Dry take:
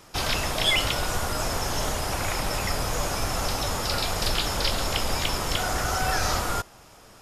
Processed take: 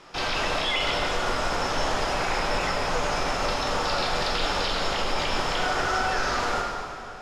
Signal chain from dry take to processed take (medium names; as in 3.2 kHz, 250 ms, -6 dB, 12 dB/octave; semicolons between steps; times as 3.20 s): low-pass 4.3 kHz 12 dB/octave; peaking EQ 72 Hz -12 dB 2.4 oct; peak limiter -22.5 dBFS, peak gain reduction 9 dB; plate-style reverb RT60 2.5 s, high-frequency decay 0.75×, DRR -0.5 dB; trim +3 dB